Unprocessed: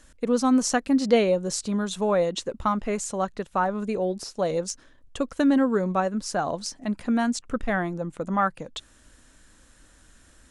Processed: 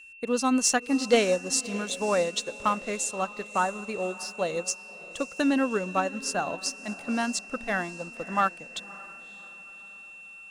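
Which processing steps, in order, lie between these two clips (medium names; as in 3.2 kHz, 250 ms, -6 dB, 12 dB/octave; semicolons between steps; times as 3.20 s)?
tilt EQ +2 dB/octave; waveshaping leveller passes 1; whistle 2.7 kHz -34 dBFS; echo that smears into a reverb 591 ms, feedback 49%, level -14 dB; upward expansion 1.5:1, over -34 dBFS; trim -2 dB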